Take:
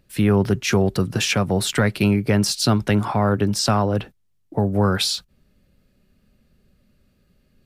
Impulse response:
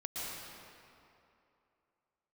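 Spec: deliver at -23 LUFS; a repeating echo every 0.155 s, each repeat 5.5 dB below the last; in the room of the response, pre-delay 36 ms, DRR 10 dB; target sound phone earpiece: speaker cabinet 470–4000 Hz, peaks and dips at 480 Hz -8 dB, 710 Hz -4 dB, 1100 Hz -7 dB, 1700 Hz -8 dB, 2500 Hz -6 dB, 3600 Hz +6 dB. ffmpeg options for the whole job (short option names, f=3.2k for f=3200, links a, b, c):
-filter_complex "[0:a]aecho=1:1:155|310|465|620|775|930|1085:0.531|0.281|0.149|0.079|0.0419|0.0222|0.0118,asplit=2[a][b];[1:a]atrim=start_sample=2205,adelay=36[c];[b][c]afir=irnorm=-1:irlink=0,volume=-12.5dB[d];[a][d]amix=inputs=2:normalize=0,highpass=470,equalizer=f=480:t=q:w=4:g=-8,equalizer=f=710:t=q:w=4:g=-4,equalizer=f=1.1k:t=q:w=4:g=-7,equalizer=f=1.7k:t=q:w=4:g=-8,equalizer=f=2.5k:t=q:w=4:g=-6,equalizer=f=3.6k:t=q:w=4:g=6,lowpass=f=4k:w=0.5412,lowpass=f=4k:w=1.3066,volume=3.5dB"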